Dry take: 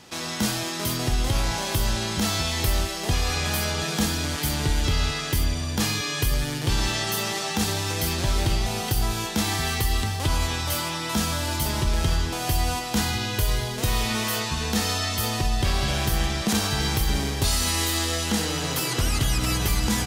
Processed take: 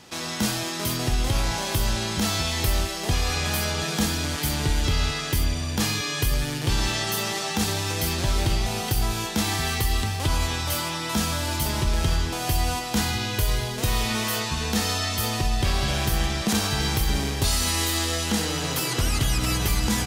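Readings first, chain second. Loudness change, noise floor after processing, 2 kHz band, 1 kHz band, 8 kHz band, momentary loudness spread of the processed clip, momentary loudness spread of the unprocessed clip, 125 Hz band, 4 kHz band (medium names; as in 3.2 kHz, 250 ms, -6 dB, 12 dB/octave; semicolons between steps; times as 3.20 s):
0.0 dB, -31 dBFS, 0.0 dB, 0.0 dB, 0.0 dB, 2 LU, 2 LU, 0.0 dB, 0.0 dB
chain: rattle on loud lows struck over -29 dBFS, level -33 dBFS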